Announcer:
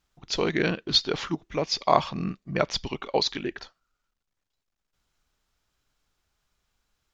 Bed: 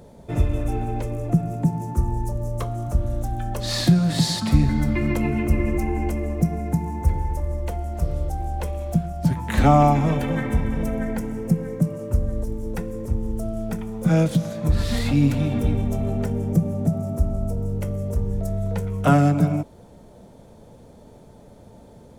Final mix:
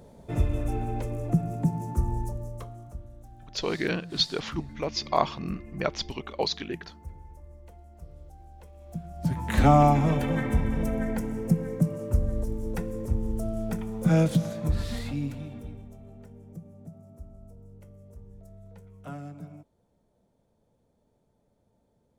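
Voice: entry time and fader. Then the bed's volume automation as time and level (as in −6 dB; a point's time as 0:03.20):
3.25 s, −3.5 dB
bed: 0:02.19 −4.5 dB
0:03.13 −22 dB
0:08.71 −22 dB
0:09.42 −3 dB
0:14.46 −3 dB
0:15.98 −23.5 dB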